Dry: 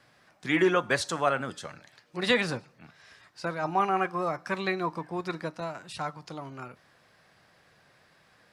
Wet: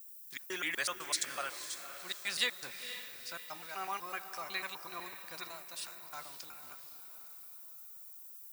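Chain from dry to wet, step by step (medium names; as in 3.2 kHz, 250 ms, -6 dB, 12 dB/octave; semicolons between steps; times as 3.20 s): slices played last to first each 125 ms, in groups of 2; expander -48 dBFS; added noise violet -60 dBFS; pre-emphasis filter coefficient 0.97; echo that smears into a reverb 497 ms, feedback 45%, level -10 dB; trim +3.5 dB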